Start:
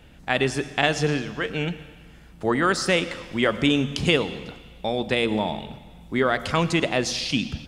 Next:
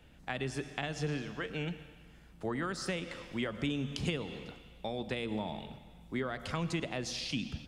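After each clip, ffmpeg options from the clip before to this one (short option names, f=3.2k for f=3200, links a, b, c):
-filter_complex "[0:a]acrossover=split=210[a][b];[b]acompressor=threshold=-25dB:ratio=6[c];[a][c]amix=inputs=2:normalize=0,volume=-9dB"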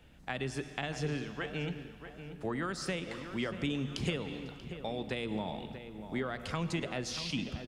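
-filter_complex "[0:a]asplit=2[a][b];[b]adelay=636,lowpass=f=2.2k:p=1,volume=-10dB,asplit=2[c][d];[d]adelay=636,lowpass=f=2.2k:p=1,volume=0.47,asplit=2[e][f];[f]adelay=636,lowpass=f=2.2k:p=1,volume=0.47,asplit=2[g][h];[h]adelay=636,lowpass=f=2.2k:p=1,volume=0.47,asplit=2[i][j];[j]adelay=636,lowpass=f=2.2k:p=1,volume=0.47[k];[a][c][e][g][i][k]amix=inputs=6:normalize=0"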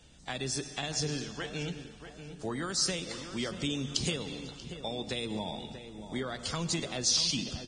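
-af "highshelf=f=3.3k:t=q:w=1.5:g=10" -ar 22050 -c:a libvorbis -b:a 16k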